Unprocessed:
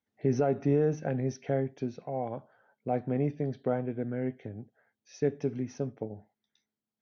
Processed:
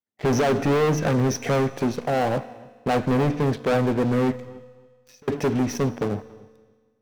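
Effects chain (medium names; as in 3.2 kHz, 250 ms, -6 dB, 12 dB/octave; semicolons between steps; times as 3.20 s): bass shelf 78 Hz -7 dB; waveshaping leveller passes 5; 4.37–5.28 s: compression 10:1, threshold -52 dBFS, peak gain reduction 31 dB; filtered feedback delay 282 ms, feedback 18%, level -22.5 dB; on a send at -15 dB: reverberation RT60 1.6 s, pre-delay 4 ms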